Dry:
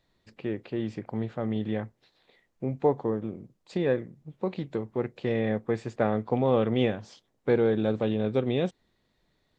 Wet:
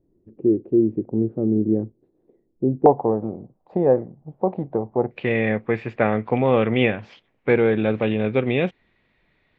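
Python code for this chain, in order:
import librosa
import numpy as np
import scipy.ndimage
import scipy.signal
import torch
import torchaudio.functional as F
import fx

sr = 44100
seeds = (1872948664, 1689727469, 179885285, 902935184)

y = fx.lowpass_res(x, sr, hz=fx.steps((0.0, 350.0), (2.86, 780.0), (5.11, 2400.0)), q=3.4)
y = F.gain(torch.from_numpy(y), 5.0).numpy()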